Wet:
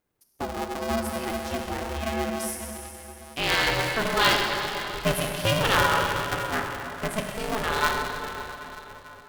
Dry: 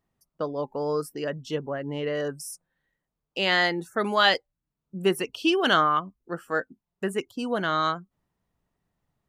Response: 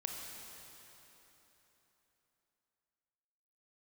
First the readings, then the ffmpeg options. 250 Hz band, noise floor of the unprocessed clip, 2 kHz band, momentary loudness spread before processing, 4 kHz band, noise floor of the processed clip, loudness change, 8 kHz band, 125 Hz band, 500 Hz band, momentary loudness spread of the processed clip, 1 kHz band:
-1.5 dB, under -85 dBFS, +2.0 dB, 16 LU, +1.0 dB, -49 dBFS, 0.0 dB, +9.0 dB, +5.5 dB, -1.5 dB, 16 LU, +1.0 dB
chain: -filter_complex "[0:a]highshelf=f=9.1k:g=11[a];[1:a]atrim=start_sample=2205[b];[a][b]afir=irnorm=-1:irlink=0,aeval=exprs='val(0)*sgn(sin(2*PI*220*n/s))':c=same"

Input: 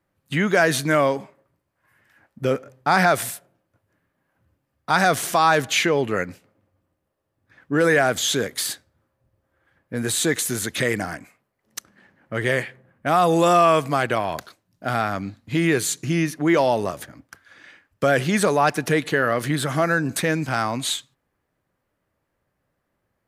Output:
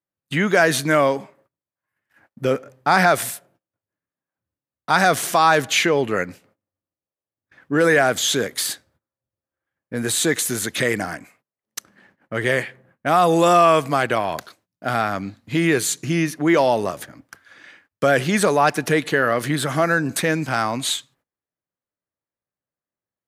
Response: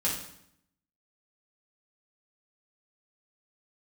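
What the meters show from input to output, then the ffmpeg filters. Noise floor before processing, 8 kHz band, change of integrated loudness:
-76 dBFS, +2.0 dB, +2.0 dB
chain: -af "lowshelf=f=72:g=-10.5,agate=range=-21dB:threshold=-58dB:ratio=16:detection=peak,volume=2dB"

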